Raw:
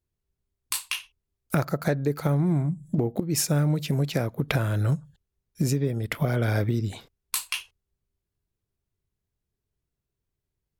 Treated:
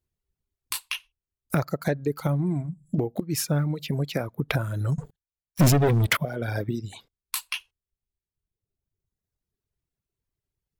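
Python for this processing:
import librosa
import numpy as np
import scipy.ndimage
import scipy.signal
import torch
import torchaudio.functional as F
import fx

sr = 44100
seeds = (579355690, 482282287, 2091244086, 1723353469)

y = fx.dynamic_eq(x, sr, hz=7500.0, q=1.4, threshold_db=-45.0, ratio=4.0, max_db=-5)
y = fx.leveller(y, sr, passes=5, at=(4.98, 6.17))
y = fx.dereverb_blind(y, sr, rt60_s=1.5)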